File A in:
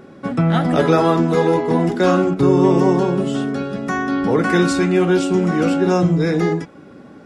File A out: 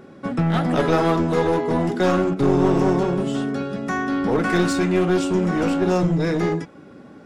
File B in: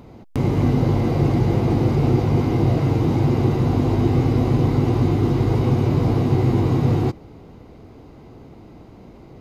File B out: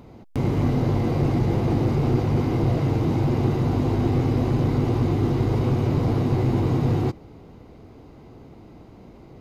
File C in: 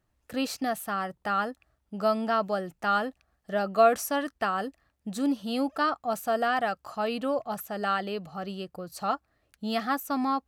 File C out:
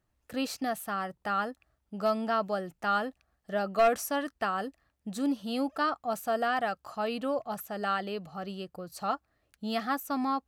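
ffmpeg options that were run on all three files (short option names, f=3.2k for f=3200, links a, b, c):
-af "aeval=exprs='clip(val(0),-1,0.168)':c=same,volume=-2.5dB"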